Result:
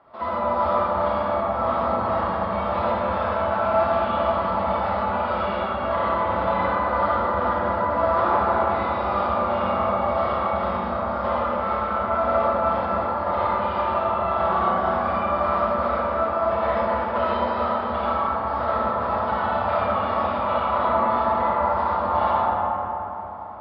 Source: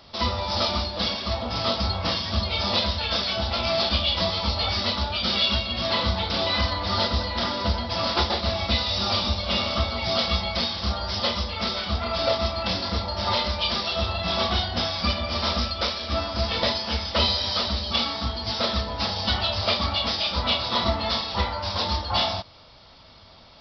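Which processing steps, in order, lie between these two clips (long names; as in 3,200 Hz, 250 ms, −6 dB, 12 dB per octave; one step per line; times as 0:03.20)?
low-pass filter 1,300 Hz 24 dB per octave
spectral tilt +4.5 dB per octave
comb and all-pass reverb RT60 4 s, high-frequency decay 0.35×, pre-delay 15 ms, DRR −9 dB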